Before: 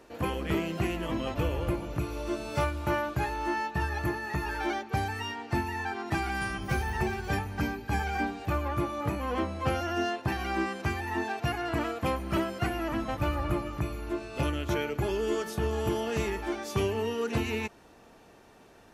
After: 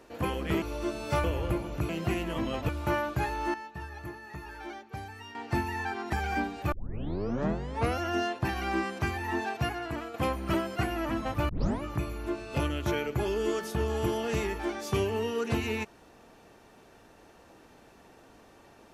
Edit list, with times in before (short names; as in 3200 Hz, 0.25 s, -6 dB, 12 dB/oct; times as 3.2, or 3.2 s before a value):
0.62–1.42 swap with 2.07–2.69
3.54–5.35 gain -10.5 dB
6.13–7.96 cut
8.55 tape start 1.26 s
11.46–11.97 fade out quadratic, to -7 dB
13.32 tape start 0.33 s